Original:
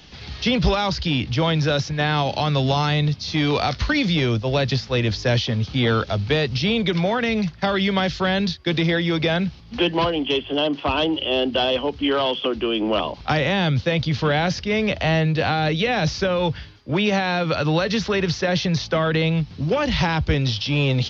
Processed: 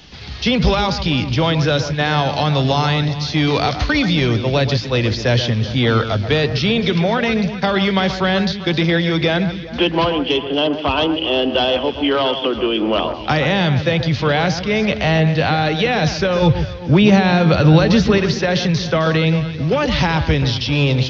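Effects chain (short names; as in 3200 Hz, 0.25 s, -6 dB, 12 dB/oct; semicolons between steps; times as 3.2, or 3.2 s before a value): 16.42–18.18 low shelf 270 Hz +11 dB; on a send: echo with dull and thin repeats by turns 0.131 s, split 2100 Hz, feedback 68%, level -9.5 dB; on the sum: gain +3.5 dB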